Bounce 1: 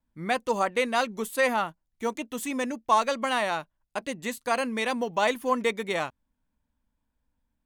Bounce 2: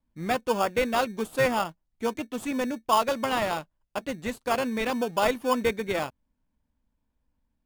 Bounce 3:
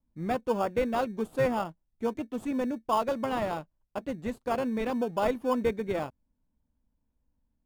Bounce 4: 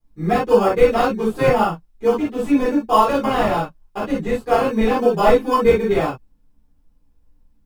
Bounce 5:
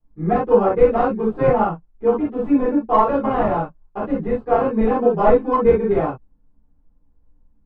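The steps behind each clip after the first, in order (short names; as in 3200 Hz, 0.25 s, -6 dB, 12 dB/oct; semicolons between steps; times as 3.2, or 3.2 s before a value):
high shelf 7400 Hz -9.5 dB; in parallel at -4.5 dB: sample-and-hold 22×; on the sum: gain -2 dB
tilt shelf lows +6 dB, about 1200 Hz; gain -6 dB
reverb, pre-delay 5 ms, DRR -11 dB; gain -1 dB
tracing distortion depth 0.047 ms; LPF 1300 Hz 12 dB/oct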